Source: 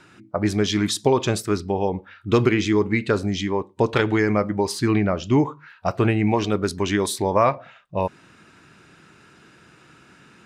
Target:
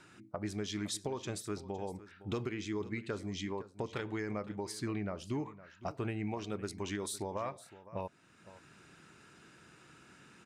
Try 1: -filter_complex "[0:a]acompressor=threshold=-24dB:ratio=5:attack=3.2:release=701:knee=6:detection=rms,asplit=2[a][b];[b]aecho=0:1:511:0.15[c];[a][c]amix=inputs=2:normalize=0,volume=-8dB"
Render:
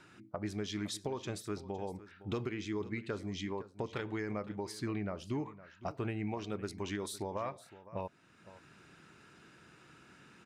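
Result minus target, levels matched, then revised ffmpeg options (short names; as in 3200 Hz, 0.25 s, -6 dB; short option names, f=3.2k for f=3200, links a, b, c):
8000 Hz band -3.5 dB
-filter_complex "[0:a]acompressor=threshold=-24dB:ratio=5:attack=3.2:release=701:knee=6:detection=rms,equalizer=f=8.3k:t=o:w=0.95:g=5,asplit=2[a][b];[b]aecho=0:1:511:0.15[c];[a][c]amix=inputs=2:normalize=0,volume=-8dB"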